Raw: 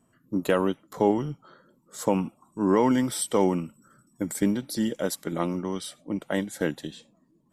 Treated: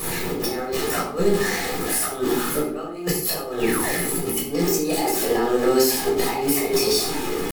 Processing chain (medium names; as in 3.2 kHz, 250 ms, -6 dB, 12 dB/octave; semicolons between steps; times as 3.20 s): jump at every zero crossing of -35.5 dBFS; treble shelf 3.2 kHz +9 dB; comb 3.3 ms, depth 38%; dynamic bell 290 Hz, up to +5 dB, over -38 dBFS, Q 5.1; compressor with a negative ratio -27 dBFS, ratio -0.5; peak limiter -18.5 dBFS, peak gain reduction 8.5 dB; pitch shift +5.5 st; painted sound fall, 3.60–4.02 s, 270–3000 Hz -38 dBFS; simulated room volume 880 m³, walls furnished, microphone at 6 m